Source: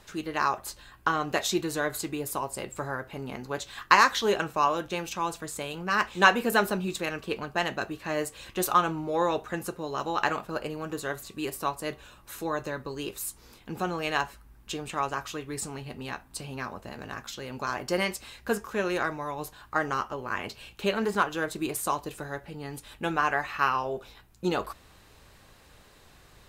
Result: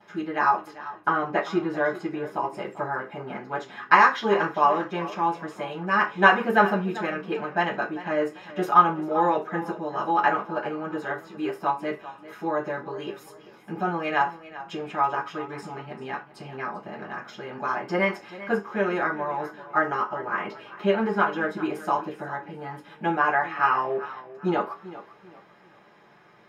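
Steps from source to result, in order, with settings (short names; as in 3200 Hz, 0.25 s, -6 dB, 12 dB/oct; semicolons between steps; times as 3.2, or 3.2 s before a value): 0.67–2.42 LPF 3400 Hz 6 dB/oct; reverb RT60 0.25 s, pre-delay 3 ms, DRR -18.5 dB; warbling echo 0.393 s, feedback 32%, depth 52 cents, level -16 dB; gain -14 dB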